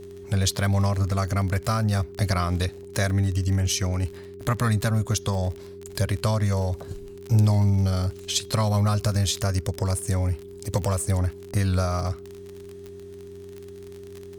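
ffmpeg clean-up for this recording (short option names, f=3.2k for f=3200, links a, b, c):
-af "adeclick=t=4,bandreject=f=91.2:t=h:w=4,bandreject=f=182.4:t=h:w=4,bandreject=f=273.6:t=h:w=4,bandreject=f=364.8:t=h:w=4,bandreject=f=400:w=30"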